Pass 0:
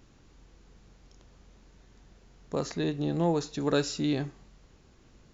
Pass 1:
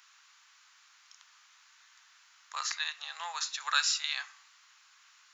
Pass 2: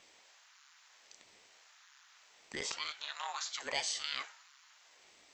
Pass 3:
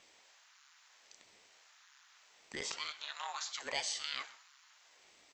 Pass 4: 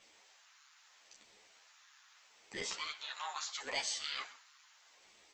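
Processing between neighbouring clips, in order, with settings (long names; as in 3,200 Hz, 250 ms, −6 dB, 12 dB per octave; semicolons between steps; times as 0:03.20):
Butterworth high-pass 1,100 Hz 36 dB per octave; level +7.5 dB
in parallel at −1 dB: compressor whose output falls as the input rises −38 dBFS, ratio −1; on the sum: ring modulator whose carrier an LFO sweeps 440 Hz, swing 85%, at 0.77 Hz; level −6 dB
single-tap delay 131 ms −19.5 dB; level −1.5 dB
string-ensemble chorus; level +3 dB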